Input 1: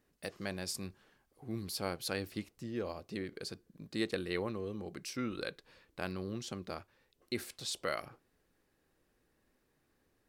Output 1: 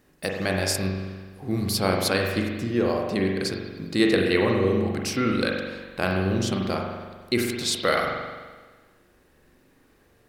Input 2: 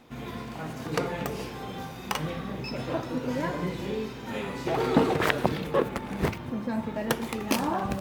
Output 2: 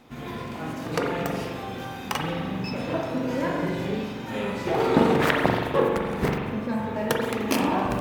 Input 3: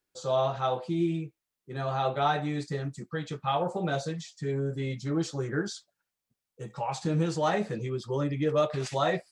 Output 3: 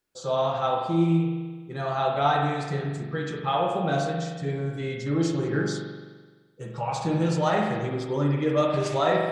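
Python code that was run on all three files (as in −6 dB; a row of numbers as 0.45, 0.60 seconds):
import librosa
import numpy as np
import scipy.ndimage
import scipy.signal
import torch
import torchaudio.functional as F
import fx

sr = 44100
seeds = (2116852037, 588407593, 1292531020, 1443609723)

y = fx.rev_spring(x, sr, rt60_s=1.4, pass_ms=(42,), chirp_ms=60, drr_db=0.0)
y = y * 10.0 ** (-26 / 20.0) / np.sqrt(np.mean(np.square(y)))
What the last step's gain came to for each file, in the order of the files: +13.0, +1.0, +1.5 decibels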